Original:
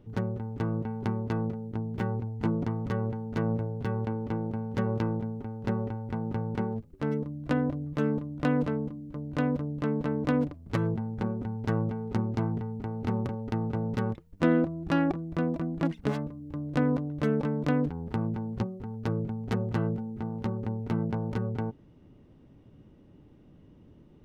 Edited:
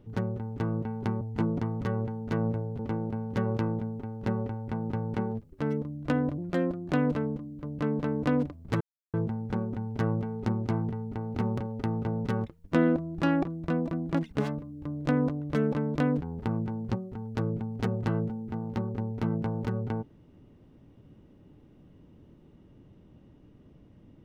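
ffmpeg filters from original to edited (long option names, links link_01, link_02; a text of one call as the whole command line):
ffmpeg -i in.wav -filter_complex "[0:a]asplit=7[link_01][link_02][link_03][link_04][link_05][link_06][link_07];[link_01]atrim=end=1.212[link_08];[link_02]atrim=start=2.258:end=3.842[link_09];[link_03]atrim=start=4.198:end=7.794[link_10];[link_04]atrim=start=7.79:end=8.44,asetpts=PTS-STARTPTS,asetrate=52479,aresample=44100,atrim=end_sample=24088,asetpts=PTS-STARTPTS[link_11];[link_05]atrim=start=8.436:end=9.302[link_12];[link_06]atrim=start=9.798:end=10.82,asetpts=PTS-STARTPTS,afade=type=out:start_time=1.018:duration=0.004:curve=hsin,apad=pad_dur=0.33[link_13];[link_07]atrim=start=10.82,asetpts=PTS-STARTPTS,afade=type=in:duration=0.004:curve=hsin[link_14];[link_08][link_09]acrossfade=duration=0.004:curve1=hsin:curve2=hsin[link_15];[link_15][link_10]acrossfade=duration=0.004:curve1=hsin:curve2=hsin[link_16];[link_16][link_11]acrossfade=duration=0.004:curve1=hsin:curve2=hsin[link_17];[link_17][link_12]acrossfade=duration=0.004:curve1=hsin:curve2=hsin[link_18];[link_13][link_14]concat=n=2:v=0:a=1[link_19];[link_18][link_19]acrossfade=duration=0.004:curve1=hsin:curve2=hsin" out.wav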